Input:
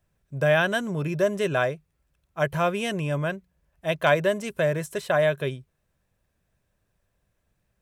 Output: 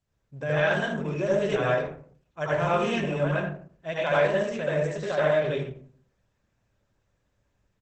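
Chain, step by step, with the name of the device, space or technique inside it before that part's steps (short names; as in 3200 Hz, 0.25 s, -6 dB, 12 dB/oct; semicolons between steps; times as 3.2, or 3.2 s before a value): speakerphone in a meeting room (reverb RT60 0.50 s, pre-delay 72 ms, DRR -6.5 dB; speakerphone echo 80 ms, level -11 dB; AGC gain up to 3 dB; gain -8.5 dB; Opus 12 kbps 48000 Hz)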